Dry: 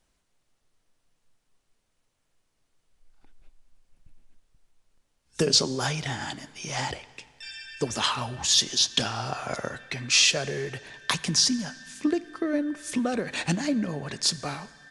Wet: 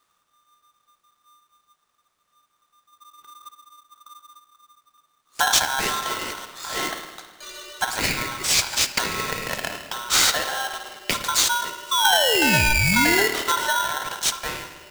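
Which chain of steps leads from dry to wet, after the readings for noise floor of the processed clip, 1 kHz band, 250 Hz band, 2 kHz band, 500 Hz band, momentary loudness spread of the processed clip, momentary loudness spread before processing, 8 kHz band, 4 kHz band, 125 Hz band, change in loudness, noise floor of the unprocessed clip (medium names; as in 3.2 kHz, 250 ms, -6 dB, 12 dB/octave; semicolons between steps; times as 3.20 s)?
-71 dBFS, +10.5 dB, -1.5 dB, +10.5 dB, +3.0 dB, 15 LU, 15 LU, +4.5 dB, +3.0 dB, +1.0 dB, +5.0 dB, -75 dBFS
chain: peaking EQ 3.6 kHz -3 dB; painted sound fall, 11.91–13.28 s, 750–2300 Hz -23 dBFS; spring tank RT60 1.3 s, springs 53 ms, chirp 30 ms, DRR 7 dB; polarity switched at an audio rate 1.2 kHz; trim +3 dB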